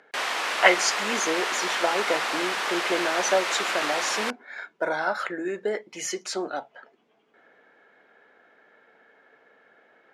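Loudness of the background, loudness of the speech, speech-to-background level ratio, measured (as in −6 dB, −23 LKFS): −26.5 LKFS, −27.5 LKFS, −1.0 dB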